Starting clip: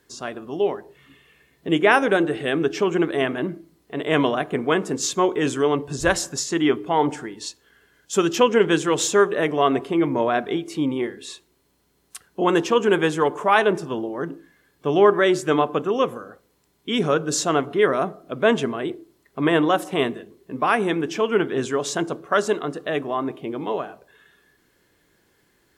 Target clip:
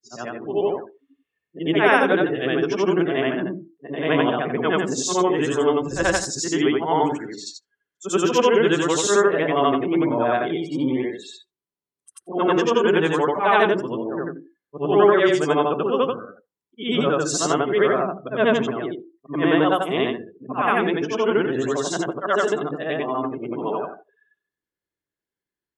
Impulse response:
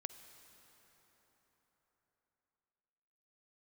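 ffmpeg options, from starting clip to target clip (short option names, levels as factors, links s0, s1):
-af "afftfilt=real='re':imag='-im':win_size=8192:overlap=0.75,afftdn=nr=29:nf=-44,volume=1.78"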